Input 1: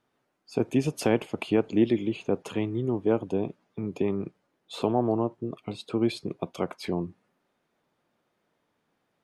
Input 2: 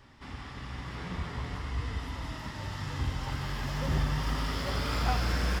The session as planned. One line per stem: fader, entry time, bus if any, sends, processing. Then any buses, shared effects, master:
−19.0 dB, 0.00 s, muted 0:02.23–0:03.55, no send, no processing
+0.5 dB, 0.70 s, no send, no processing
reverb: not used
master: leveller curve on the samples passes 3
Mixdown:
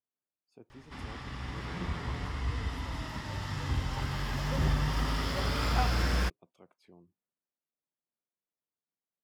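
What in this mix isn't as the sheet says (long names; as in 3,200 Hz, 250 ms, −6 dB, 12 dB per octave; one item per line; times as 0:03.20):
stem 1 −19.0 dB → −28.5 dB
master: missing leveller curve on the samples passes 3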